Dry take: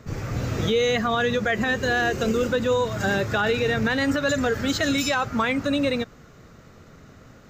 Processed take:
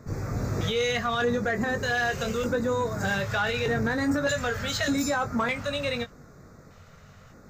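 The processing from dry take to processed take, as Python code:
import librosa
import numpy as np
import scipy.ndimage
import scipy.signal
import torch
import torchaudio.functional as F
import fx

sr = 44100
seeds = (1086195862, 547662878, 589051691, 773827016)

y = fx.filter_lfo_notch(x, sr, shape='square', hz=0.82, low_hz=310.0, high_hz=3000.0, q=0.83)
y = fx.doubler(y, sr, ms=21.0, db=-7.5)
y = 10.0 ** (-15.5 / 20.0) * np.tanh(y / 10.0 ** (-15.5 / 20.0))
y = y * 10.0 ** (-1.5 / 20.0)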